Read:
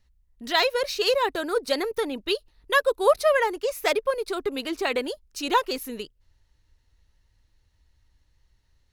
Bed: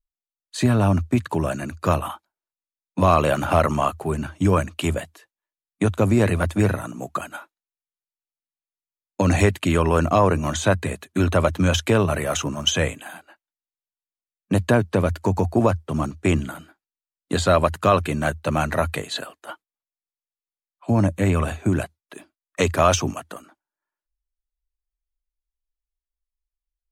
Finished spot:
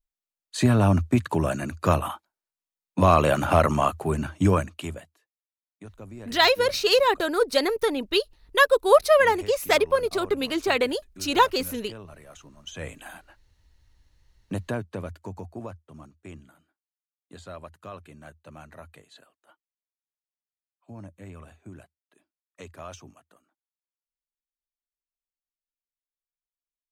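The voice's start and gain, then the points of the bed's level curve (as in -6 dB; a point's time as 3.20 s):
5.85 s, +3.0 dB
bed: 4.47 s -1 dB
5.42 s -24 dB
12.61 s -24 dB
13.03 s -4.5 dB
13.78 s -4.5 dB
16.18 s -23.5 dB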